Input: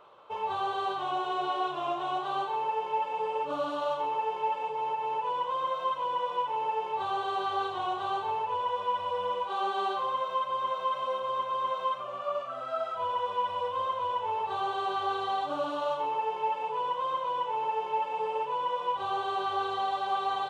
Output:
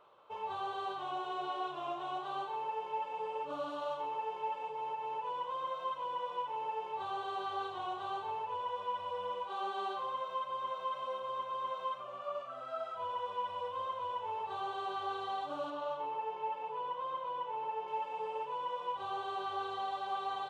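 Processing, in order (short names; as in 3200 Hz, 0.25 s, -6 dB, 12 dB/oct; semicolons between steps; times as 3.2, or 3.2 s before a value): 15.7–17.88 high shelf 5200 Hz -10.5 dB; gain -7.5 dB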